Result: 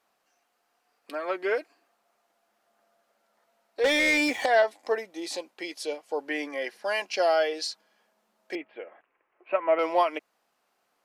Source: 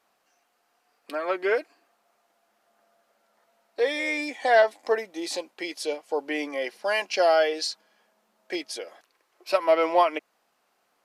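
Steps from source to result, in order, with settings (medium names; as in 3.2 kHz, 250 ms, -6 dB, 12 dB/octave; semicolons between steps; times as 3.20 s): 3.84–4.46 s: waveshaping leveller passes 3; 6.19–6.88 s: peaking EQ 1.7 kHz +7 dB 0.35 oct; 8.55–9.79 s: steep low-pass 2.7 kHz 48 dB/octave; trim -3 dB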